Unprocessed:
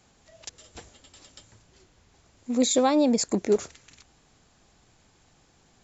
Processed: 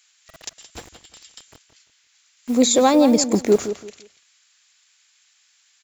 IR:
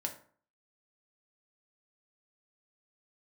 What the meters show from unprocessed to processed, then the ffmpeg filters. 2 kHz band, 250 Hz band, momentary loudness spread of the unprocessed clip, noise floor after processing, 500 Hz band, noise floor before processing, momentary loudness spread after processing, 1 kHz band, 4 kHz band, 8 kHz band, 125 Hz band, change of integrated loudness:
+7.0 dB, +6.5 dB, 16 LU, -62 dBFS, +6.5 dB, -62 dBFS, 17 LU, +7.0 dB, +6.5 dB, n/a, +7.0 dB, +6.5 dB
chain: -filter_complex "[0:a]acrossover=split=1600[a][b];[a]acrusher=bits=7:mix=0:aa=0.000001[c];[c][b]amix=inputs=2:normalize=0,asplit=2[d][e];[e]adelay=171,lowpass=f=3.8k:p=1,volume=-11dB,asplit=2[f][g];[g]adelay=171,lowpass=f=3.8k:p=1,volume=0.26,asplit=2[h][i];[i]adelay=171,lowpass=f=3.8k:p=1,volume=0.26[j];[d][f][h][j]amix=inputs=4:normalize=0,volume=6.5dB"

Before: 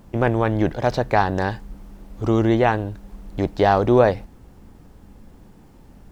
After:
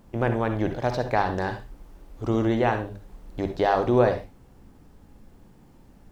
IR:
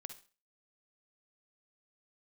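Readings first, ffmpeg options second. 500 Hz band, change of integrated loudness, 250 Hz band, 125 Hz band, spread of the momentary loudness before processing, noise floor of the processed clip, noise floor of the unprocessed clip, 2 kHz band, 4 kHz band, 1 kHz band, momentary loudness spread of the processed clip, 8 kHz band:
-4.5 dB, -5.0 dB, -5.0 dB, -5.5 dB, 16 LU, -54 dBFS, -48 dBFS, -4.5 dB, -4.5 dB, -5.0 dB, 14 LU, n/a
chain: -filter_complex "[0:a]bandreject=f=50:t=h:w=6,bandreject=f=100:t=h:w=6,bandreject=f=150:t=h:w=6,bandreject=f=200:t=h:w=6[a];[1:a]atrim=start_sample=2205,atrim=end_sample=6615[b];[a][b]afir=irnorm=-1:irlink=0"

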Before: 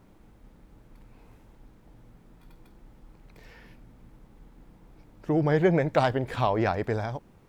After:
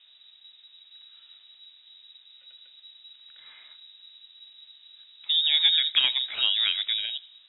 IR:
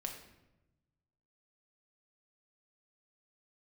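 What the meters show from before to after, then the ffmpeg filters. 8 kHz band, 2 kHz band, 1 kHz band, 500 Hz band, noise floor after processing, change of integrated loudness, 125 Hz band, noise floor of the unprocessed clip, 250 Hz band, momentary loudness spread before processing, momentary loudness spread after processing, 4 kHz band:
n/a, +1.0 dB, under -15 dB, under -30 dB, -56 dBFS, +4.0 dB, under -40 dB, -57 dBFS, under -35 dB, 9 LU, 9 LU, +25.0 dB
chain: -filter_complex "[0:a]asplit=2[a][b];[1:a]atrim=start_sample=2205,adelay=79[c];[b][c]afir=irnorm=-1:irlink=0,volume=-19dB[d];[a][d]amix=inputs=2:normalize=0,lowpass=f=3.3k:t=q:w=0.5098,lowpass=f=3.3k:t=q:w=0.6013,lowpass=f=3.3k:t=q:w=0.9,lowpass=f=3.3k:t=q:w=2.563,afreqshift=-3900"

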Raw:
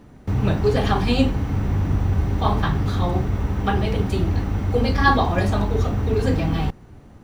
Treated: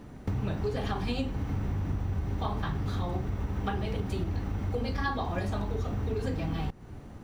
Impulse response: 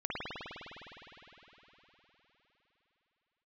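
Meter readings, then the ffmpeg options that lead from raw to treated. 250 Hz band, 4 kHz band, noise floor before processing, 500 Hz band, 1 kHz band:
-11.0 dB, -11.5 dB, -46 dBFS, -11.5 dB, -12.5 dB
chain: -af "acompressor=threshold=-29dB:ratio=5"

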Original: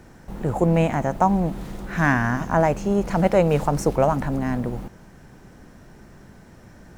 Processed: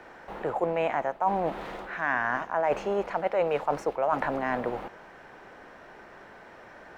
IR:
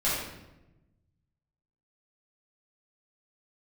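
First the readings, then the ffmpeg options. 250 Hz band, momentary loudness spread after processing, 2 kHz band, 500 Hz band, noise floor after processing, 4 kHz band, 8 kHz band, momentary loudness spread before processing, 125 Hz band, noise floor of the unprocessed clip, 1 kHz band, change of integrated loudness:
-14.0 dB, 21 LU, -3.5 dB, -5.5 dB, -50 dBFS, -5.5 dB, under -15 dB, 11 LU, -20.5 dB, -48 dBFS, -4.0 dB, -7.0 dB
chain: -filter_complex "[0:a]acrossover=split=420 3500:gain=0.0708 1 0.1[a][b][c];[a][b][c]amix=inputs=3:normalize=0,areverse,acompressor=threshold=-30dB:ratio=6,areverse,volume=6.5dB"

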